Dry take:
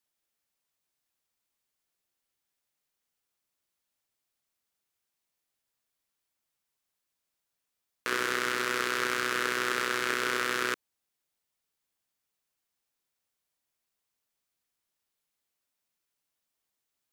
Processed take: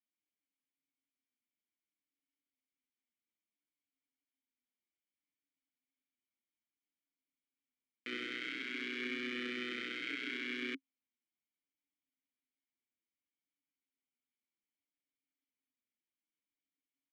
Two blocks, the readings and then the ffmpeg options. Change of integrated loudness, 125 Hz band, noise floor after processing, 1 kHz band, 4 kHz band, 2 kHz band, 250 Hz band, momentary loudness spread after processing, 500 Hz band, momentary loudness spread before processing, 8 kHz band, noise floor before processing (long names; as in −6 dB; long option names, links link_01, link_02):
−10.5 dB, −15.5 dB, below −85 dBFS, −22.5 dB, −8.5 dB, −11.0 dB, −4.0 dB, 4 LU, −13.0 dB, 4 LU, −25.0 dB, −84 dBFS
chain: -filter_complex "[0:a]adynamicsmooth=sensitivity=3.5:basefreq=3400,asplit=3[link_01][link_02][link_03];[link_01]bandpass=frequency=270:width_type=q:width=8,volume=0dB[link_04];[link_02]bandpass=frequency=2290:width_type=q:width=8,volume=-6dB[link_05];[link_03]bandpass=frequency=3010:width_type=q:width=8,volume=-9dB[link_06];[link_04][link_05][link_06]amix=inputs=3:normalize=0,asplit=2[link_07][link_08];[link_08]adelay=6.1,afreqshift=-0.62[link_09];[link_07][link_09]amix=inputs=2:normalize=1,volume=7.5dB"